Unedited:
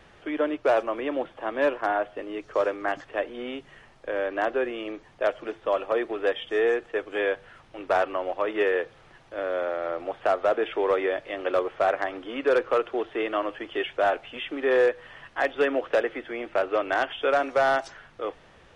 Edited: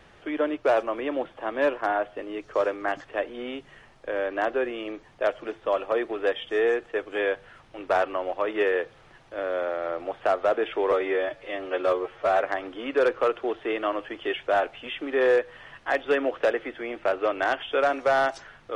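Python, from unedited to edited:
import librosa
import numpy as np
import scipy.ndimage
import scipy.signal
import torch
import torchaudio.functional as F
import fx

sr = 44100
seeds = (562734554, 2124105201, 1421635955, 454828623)

y = fx.edit(x, sr, fx.stretch_span(start_s=10.92, length_s=1.0, factor=1.5), tone=tone)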